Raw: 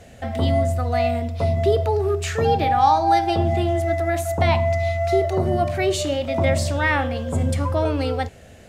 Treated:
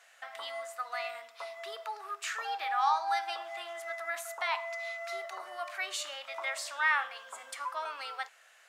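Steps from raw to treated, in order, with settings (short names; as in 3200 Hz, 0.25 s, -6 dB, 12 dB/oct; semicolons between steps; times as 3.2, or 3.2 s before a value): ladder high-pass 1000 Hz, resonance 45%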